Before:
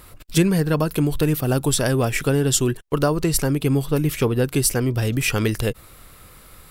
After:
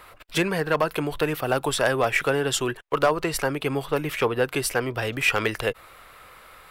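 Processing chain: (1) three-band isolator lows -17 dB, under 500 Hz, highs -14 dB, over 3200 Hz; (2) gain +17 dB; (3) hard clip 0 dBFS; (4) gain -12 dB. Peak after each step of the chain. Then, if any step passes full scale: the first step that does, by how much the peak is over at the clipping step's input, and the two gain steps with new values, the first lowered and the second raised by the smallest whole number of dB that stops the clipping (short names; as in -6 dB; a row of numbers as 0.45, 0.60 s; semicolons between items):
-10.5, +6.5, 0.0, -12.0 dBFS; step 2, 6.5 dB; step 2 +10 dB, step 4 -5 dB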